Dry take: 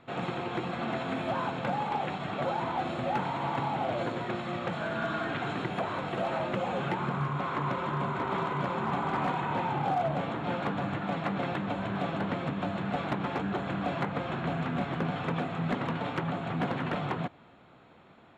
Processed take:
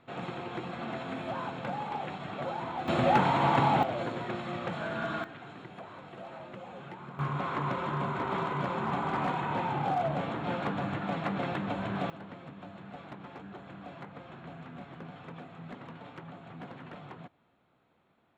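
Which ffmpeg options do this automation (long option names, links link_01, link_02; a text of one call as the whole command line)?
ffmpeg -i in.wav -af "asetnsamples=nb_out_samples=441:pad=0,asendcmd='2.88 volume volume 6.5dB;3.83 volume volume -2dB;5.24 volume volume -13.5dB;7.19 volume volume -1dB;12.1 volume volume -14dB',volume=-4.5dB" out.wav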